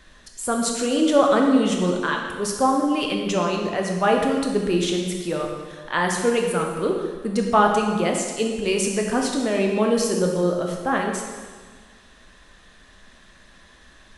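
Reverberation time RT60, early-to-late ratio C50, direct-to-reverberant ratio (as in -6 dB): 1.6 s, 3.0 dB, 1.0 dB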